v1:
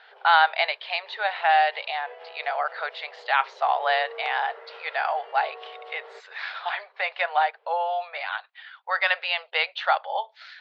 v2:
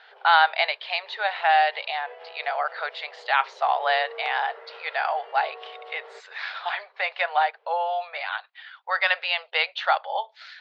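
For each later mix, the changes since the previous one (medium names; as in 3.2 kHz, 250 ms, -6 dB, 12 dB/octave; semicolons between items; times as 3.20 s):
speech: remove distance through air 56 m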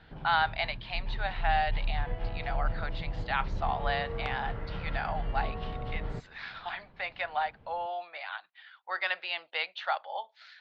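speech -9.0 dB; master: remove brick-wall FIR high-pass 390 Hz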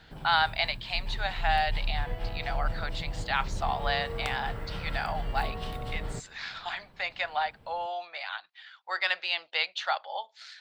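master: remove distance through air 260 m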